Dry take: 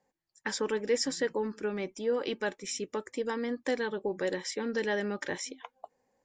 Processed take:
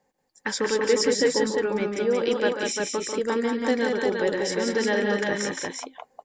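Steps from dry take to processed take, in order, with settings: multi-tap echo 143/182/194/350 ms -9/-4/-19/-3.5 dB; trim +5.5 dB

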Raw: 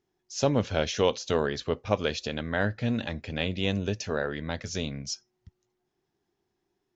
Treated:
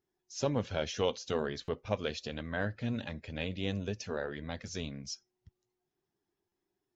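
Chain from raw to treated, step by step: coarse spectral quantiser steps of 15 dB; buffer glitch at 1.64/6.48 s, samples 256, times 6; trim -6.5 dB

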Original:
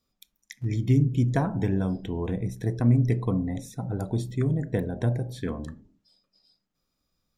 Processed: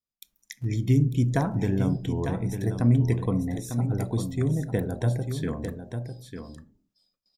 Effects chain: gate with hold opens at -57 dBFS; treble shelf 6.3 kHz +8 dB; delay 899 ms -8 dB

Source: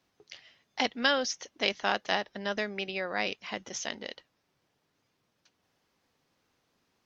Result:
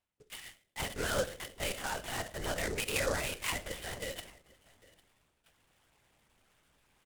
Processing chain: gate -57 dBFS, range -20 dB; treble shelf 2.1 kHz +11 dB; comb 2 ms, depth 50%; dynamic bell 920 Hz, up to +5 dB, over -40 dBFS, Q 0.75; peak limiter -23.5 dBFS, peak gain reduction 20.5 dB; reverse; upward compressor, threshold -50 dBFS; reverse; delay 805 ms -23 dB; on a send at -8 dB: reverberation RT60 0.65 s, pre-delay 5 ms; on the sum: LPC vocoder at 8 kHz whisper; delay time shaken by noise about 5.8 kHz, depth 0.049 ms

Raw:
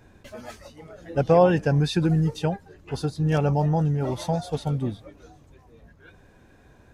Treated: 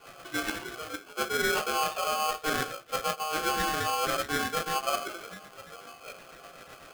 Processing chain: Chebyshev low-pass 3.4 kHz, order 8; reverberation RT60 0.45 s, pre-delay 3 ms, DRR -4 dB; rotary cabinet horn 8 Hz; in parallel at -7.5 dB: small samples zeroed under -22 dBFS; on the sum: de-hum 162.8 Hz, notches 33; reverse; compression 8:1, threshold -24 dBFS, peak gain reduction 25 dB; reverse; polarity switched at an audio rate 930 Hz; trim -3 dB

